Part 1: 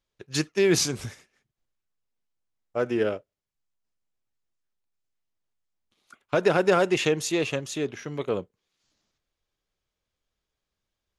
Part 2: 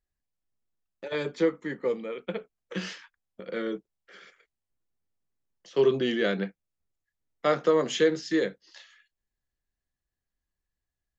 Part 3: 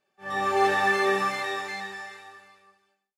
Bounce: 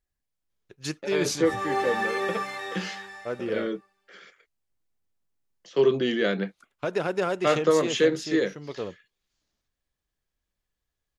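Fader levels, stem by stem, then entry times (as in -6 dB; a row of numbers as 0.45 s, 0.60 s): -6.0 dB, +1.5 dB, -5.0 dB; 0.50 s, 0.00 s, 1.15 s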